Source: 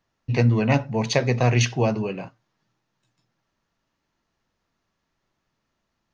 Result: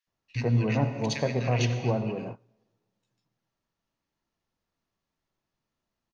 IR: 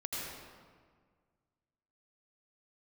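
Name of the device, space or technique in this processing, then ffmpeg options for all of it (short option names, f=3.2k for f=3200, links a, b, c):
keyed gated reverb: -filter_complex "[0:a]asettb=1/sr,asplit=3[a][b][c];[a]atrim=end=1.244[d];[b]atrim=start=1.24:end=2.14,asetpts=PTS-STARTPTS,afade=t=in:d=0.004:c=qsin,afade=t=out:st=0.896:d=0.004:c=qsin,lowpass=5.5k[e];[c]atrim=start=2.136[f];[d][e]acrossfade=d=0.004:c1=hsin:c2=qsin[g];[g][f]acrossfade=d=0.004:c1=qsin:c2=hsin,acrossover=split=1600[h][i];[h]adelay=70[j];[j][i]amix=inputs=2:normalize=0,asplit=3[k][l][m];[1:a]atrim=start_sample=2205[n];[l][n]afir=irnorm=-1:irlink=0[o];[m]apad=whole_len=273434[p];[o][p]sidechaingate=range=-24dB:threshold=-34dB:ratio=16:detection=peak,volume=-9dB[q];[k][q]amix=inputs=2:normalize=0,volume=-8dB"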